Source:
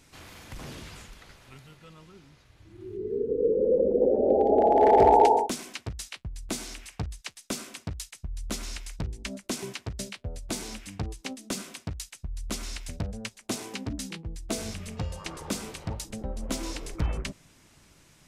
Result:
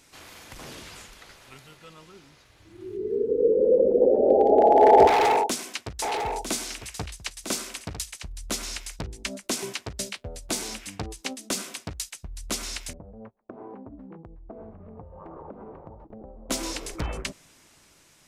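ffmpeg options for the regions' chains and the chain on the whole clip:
ffmpeg -i in.wav -filter_complex "[0:a]asettb=1/sr,asplit=3[link_01][link_02][link_03];[link_01]atrim=end=5.074[link_04];[link_02]atrim=start=5.07:end=8.32,asetpts=PTS-STARTPTS,afade=type=in:duration=0.004:curve=qsin,afade=type=out:start_time=3.246:duration=0.004:curve=qsin,asoftclip=type=hard:threshold=-22dB,aecho=1:1:951:0.376,atrim=end_sample=143325[link_05];[link_03]atrim=start=8.316[link_06];[link_04][link_05]acrossfade=duration=0.004:curve1=hsin:curve2=qsin[link_07];[link_07][link_06]acrossfade=duration=0.004:curve1=qsin:curve2=hsin,asettb=1/sr,asplit=3[link_08][link_09][link_10];[link_08]atrim=end=12.934[link_11];[link_09]atrim=start=12.93:end=16.5,asetpts=PTS-STARTPTS,afade=type=in:duration=0.004:curve=qsin,afade=type=out:start_time=3.566:duration=0.004:curve=qsin,lowpass=frequency=1000:width=0.5412,lowpass=frequency=1000:width=1.3066,agate=range=-13dB:threshold=-48dB:ratio=16:release=100:detection=peak,acompressor=threshold=-39dB:ratio=12:attack=3.2:release=140:knee=1:detection=peak[link_12];[link_10]atrim=start=16.496[link_13];[link_11][link_12]acrossfade=duration=0.004:curve1=hsin:curve2=qsin[link_14];[link_14][link_13]acrossfade=duration=0.004:curve1=qsin:curve2=hsin,bass=frequency=250:gain=-8,treble=frequency=4000:gain=2,dynaudnorm=framelen=220:gausssize=11:maxgain=3dB,volume=1.5dB" out.wav

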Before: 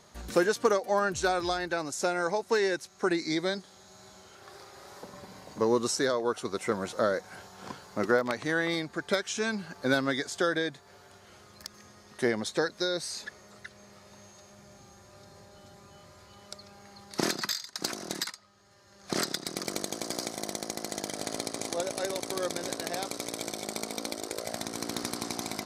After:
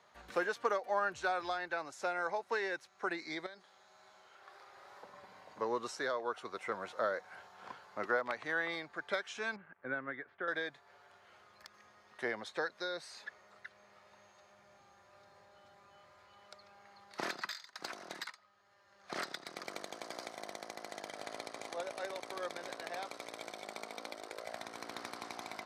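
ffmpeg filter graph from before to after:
ffmpeg -i in.wav -filter_complex "[0:a]asettb=1/sr,asplit=3[link_01][link_02][link_03];[link_01]atrim=end=3.464[link_04];[link_02]atrim=start=3.46:end=4.67,asetpts=PTS-STARTPTS,afade=type=in:duration=0.004:curve=qsin,afade=type=out:start_time=1.206:duration=0.004:curve=qsin,equalizer=frequency=77:width=0.38:gain=-6.5,acompressor=threshold=-39dB:ratio=5:attack=3.2:release=140:knee=1:detection=peak[link_05];[link_03]atrim=start=4.666[link_06];[link_04][link_05]acrossfade=duration=0.004:curve1=hsin:curve2=qsin[link_07];[link_07][link_06]acrossfade=duration=0.004:curve1=qsin:curve2=hsin,asettb=1/sr,asplit=3[link_08][link_09][link_10];[link_08]atrim=end=9.564[link_11];[link_09]atrim=start=9.56:end=10.48,asetpts=PTS-STARTPTS,afade=type=in:duration=0.004:curve=qsin,afade=type=out:start_time=0.916:duration=0.004:curve=qsin,equalizer=frequency=810:width=0.97:gain=-9,aeval=exprs='sgn(val(0))*max(abs(val(0))-0.002,0)':channel_layout=same,lowpass=frequency=2000:width=0.5412,lowpass=frequency=2000:width=1.3066[link_12];[link_10]atrim=start=10.476[link_13];[link_11][link_12]acrossfade=duration=0.004:curve1=hsin:curve2=qsin[link_14];[link_14][link_13]acrossfade=duration=0.004:curve1=qsin:curve2=hsin,highpass=52,acrossover=split=550 3300:gain=0.2 1 0.178[link_15][link_16][link_17];[link_15][link_16][link_17]amix=inputs=3:normalize=0,volume=-4dB" out.wav

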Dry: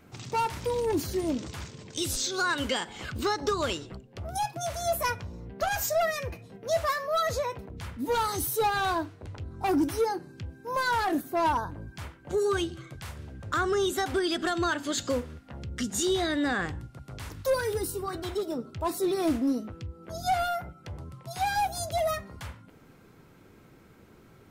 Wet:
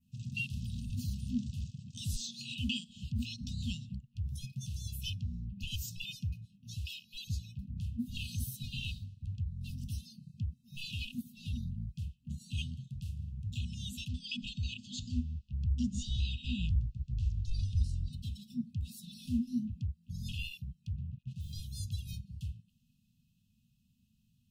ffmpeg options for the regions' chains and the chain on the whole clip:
ffmpeg -i in.wav -filter_complex "[0:a]asettb=1/sr,asplit=3[link_01][link_02][link_03];[link_01]atrim=end=14.084[link_04];[link_02]atrim=start=14.08:end=18.13,asetpts=PTS-STARTPTS,afade=type=in:duration=0.004:curve=qsin,afade=type=out:start_time=4.046:duration=0.004:curve=qsin,asubboost=boost=7:cutoff=73,lowpass=frequency=7100:width=0.5412,lowpass=frequency=7100:width=1.3066[link_05];[link_03]atrim=start=18.126[link_06];[link_04][link_05]acrossfade=duration=0.004:curve1=hsin:curve2=qsin[link_07];[link_07][link_06]acrossfade=duration=0.004:curve1=qsin:curve2=hsin,asettb=1/sr,asplit=3[link_08][link_09][link_10];[link_08]atrim=end=20.964[link_11];[link_09]atrim=start=20.96:end=21.53,asetpts=PTS-STARTPTS,afade=type=in:duration=0.004:curve=qsin,afade=type=out:start_time=0.566:duration=0.004:curve=qsin,lowpass=1800,equalizer=frequency=350:width=2.8:gain=-15,acrusher=bits=6:mix=0:aa=0.5[link_12];[link_10]atrim=start=21.526[link_13];[link_11][link_12]acrossfade=duration=0.004:curve1=hsin:curve2=qsin[link_14];[link_14][link_13]acrossfade=duration=0.004:curve1=qsin:curve2=hsin,afwtdn=0.0251,adynamicequalizer=threshold=0.00282:dfrequency=3900:dqfactor=0.9:tfrequency=3900:tqfactor=0.9:attack=5:release=100:ratio=0.375:range=2.5:mode=boostabove:tftype=bell,afftfilt=real='re*(1-between(b*sr/4096,250,2500))':imag='im*(1-between(b*sr/4096,250,2500))':win_size=4096:overlap=0.75,volume=2.5dB" out.wav

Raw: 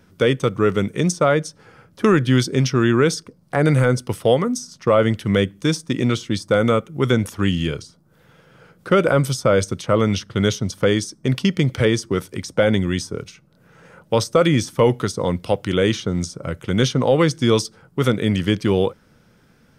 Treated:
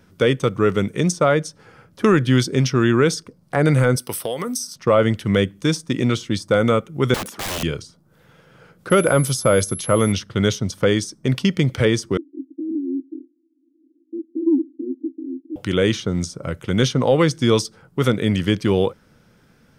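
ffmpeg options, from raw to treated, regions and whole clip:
ffmpeg -i in.wav -filter_complex "[0:a]asettb=1/sr,asplit=3[link_01][link_02][link_03];[link_01]atrim=end=3.964[link_04];[link_02]atrim=start=3.96:end=4.76,asetpts=PTS-STARTPTS,afade=type=in:duration=0.004:curve=qsin,afade=type=out:start_time=0.796:duration=0.004:curve=qsin,aemphasis=mode=production:type=bsi,bandreject=frequency=6900:width=5.1,acompressor=threshold=-20dB:ratio=12:attack=3.2:release=140:knee=1:detection=peak[link_05];[link_03]atrim=start=4.756[link_06];[link_04][link_05]acrossfade=duration=0.004:curve1=hsin:curve2=qsin[link_07];[link_07][link_06]acrossfade=duration=0.004:curve1=qsin:curve2=hsin,asettb=1/sr,asplit=3[link_08][link_09][link_10];[link_08]atrim=end=7.144[link_11];[link_09]atrim=start=7.14:end=7.63,asetpts=PTS-STARTPTS,afade=type=in:duration=0.004:curve=qsin,afade=type=out:start_time=0.486:duration=0.004:curve=qsin,highpass=frequency=170:width=0.5412,highpass=frequency=170:width=1.3066,aeval=exprs='(mod(11.9*val(0)+1,2)-1)/11.9':channel_layout=same[link_12];[link_10]atrim=start=7.626[link_13];[link_11][link_12]acrossfade=duration=0.004:curve1=hsin:curve2=qsin[link_14];[link_14][link_13]acrossfade=duration=0.004:curve1=qsin:curve2=hsin,asettb=1/sr,asplit=3[link_15][link_16][link_17];[link_15]atrim=end=8.904[link_18];[link_16]atrim=start=8.9:end=10.12,asetpts=PTS-STARTPTS,afade=type=in:duration=0.004:curve=qsin,afade=type=out:start_time=1.216:duration=0.004:curve=qsin,highshelf=frequency=7900:gain=6,aeval=exprs='val(0)+0.0316*sin(2*PI*11000*n/s)':channel_layout=same[link_19];[link_17]atrim=start=10.116[link_20];[link_18][link_19]acrossfade=duration=0.004:curve1=hsin:curve2=qsin[link_21];[link_21][link_20]acrossfade=duration=0.004:curve1=qsin:curve2=hsin,asettb=1/sr,asplit=3[link_22][link_23][link_24];[link_22]atrim=end=12.174[link_25];[link_23]atrim=start=12.17:end=15.56,asetpts=PTS-STARTPTS,afade=type=in:duration=0.004:curve=qsin,afade=type=out:start_time=3.386:duration=0.004:curve=qsin,asuperpass=centerf=300:order=8:qfactor=3.8,acontrast=42[link_26];[link_24]atrim=start=15.556[link_27];[link_25][link_26]acrossfade=duration=0.004:curve1=hsin:curve2=qsin[link_28];[link_28][link_27]acrossfade=duration=0.004:curve1=qsin:curve2=hsin" out.wav

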